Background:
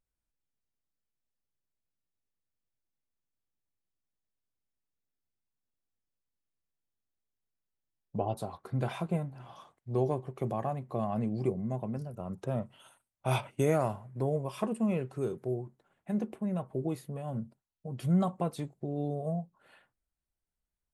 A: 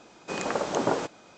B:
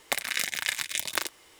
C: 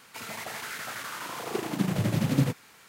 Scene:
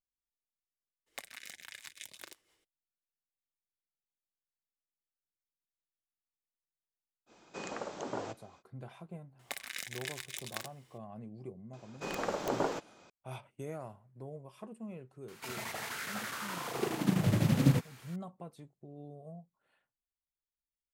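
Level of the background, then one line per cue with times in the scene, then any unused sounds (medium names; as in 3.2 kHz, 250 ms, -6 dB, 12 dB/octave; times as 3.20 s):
background -15 dB
1.06 s: add B -16 dB, fades 0.02 s + rotary cabinet horn 6 Hz
7.26 s: add A -12 dB, fades 0.05 s + gain riding within 4 dB
9.39 s: add B -12.5 dB
11.73 s: add A -6.5 dB + tracing distortion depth 0.1 ms
15.28 s: add C -3 dB + bass shelf 140 Hz +4 dB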